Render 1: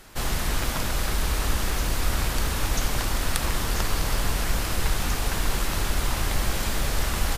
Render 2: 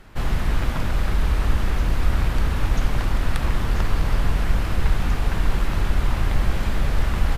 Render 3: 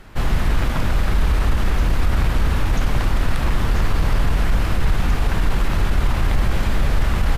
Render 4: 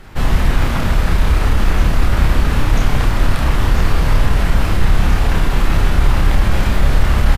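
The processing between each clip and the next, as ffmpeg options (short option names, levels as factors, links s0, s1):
-af "bass=f=250:g=6,treble=f=4000:g=-13"
-af "alimiter=limit=0.224:level=0:latency=1:release=15,volume=1.58"
-filter_complex "[0:a]asplit=2[s0][s1];[s1]adelay=30,volume=0.708[s2];[s0][s2]amix=inputs=2:normalize=0,volume=1.41"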